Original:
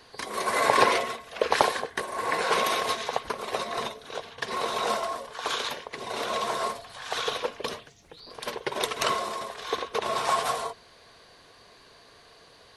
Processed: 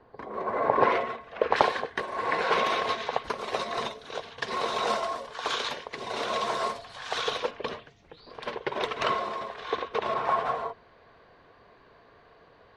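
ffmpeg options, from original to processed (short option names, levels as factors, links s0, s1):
-af "asetnsamples=n=441:p=0,asendcmd='0.83 lowpass f 2000;1.56 lowpass f 3700;3.24 lowpass f 6300;7.51 lowpass f 3000;10.14 lowpass f 1800',lowpass=1000"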